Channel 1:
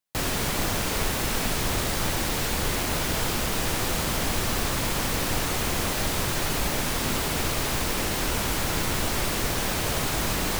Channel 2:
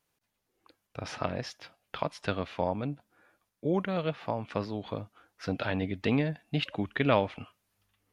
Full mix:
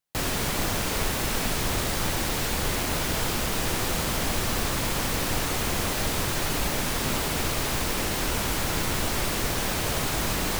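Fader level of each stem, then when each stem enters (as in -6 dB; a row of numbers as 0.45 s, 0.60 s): -0.5 dB, -15.5 dB; 0.00 s, 0.00 s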